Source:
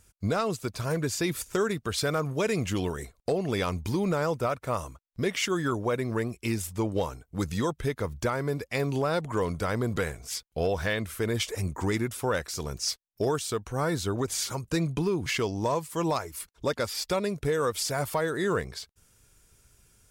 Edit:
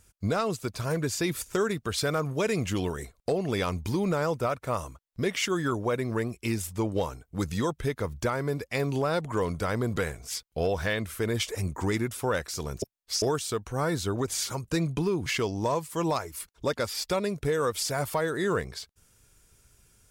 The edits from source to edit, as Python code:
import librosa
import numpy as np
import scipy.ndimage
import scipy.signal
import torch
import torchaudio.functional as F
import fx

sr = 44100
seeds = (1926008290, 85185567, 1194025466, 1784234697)

y = fx.edit(x, sr, fx.reverse_span(start_s=12.82, length_s=0.4), tone=tone)